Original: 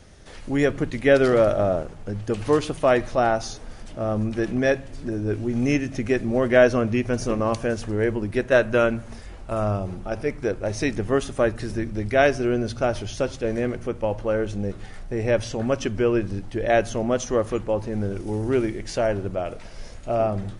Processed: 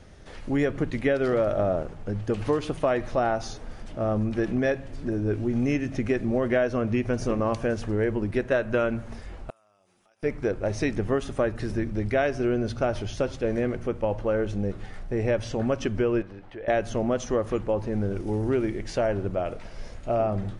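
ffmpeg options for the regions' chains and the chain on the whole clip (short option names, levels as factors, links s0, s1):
-filter_complex "[0:a]asettb=1/sr,asplit=3[s0][s1][s2];[s0]atrim=end=9.504[s3];[s1]atrim=start=9.5:end=10.23,asetpts=PTS-STARTPTS,afade=t=in:d=0.004:c=qsin,afade=t=out:st=0.726:d=0.004:c=qsin,aderivative,bandreject=f=4300:w=17,acompressor=threshold=0.00112:ratio=12:attack=3.2:release=140:knee=1:detection=peak[s4];[s2]atrim=start=10.226[s5];[s3][s4]acrossfade=d=0.004:c1=hsin:c2=qsin[s6];[s6][s5]acrossfade=d=0.004:c1=qsin:c2=hsin,asettb=1/sr,asplit=3[s7][s8][s9];[s7]atrim=end=16.224[s10];[s8]atrim=start=16.22:end=16.68,asetpts=PTS-STARTPTS,afade=t=in:d=0.004:c=qsin,afade=t=out:st=0.456:d=0.004:c=qsin,acrossover=split=420 3600:gain=0.224 1 0.158[s11][s12][s13];[s11][s12][s13]amix=inputs=3:normalize=0,acompressor=threshold=0.0112:ratio=2:attack=3.2:release=140:knee=1:detection=peak[s14];[s9]atrim=start=16.676[s15];[s10][s14]acrossfade=d=0.004:c1=hsin:c2=qsin[s16];[s16][s15]acrossfade=d=0.004:c1=qsin:c2=hsin,highshelf=f=4700:g=-9,acompressor=threshold=0.1:ratio=6"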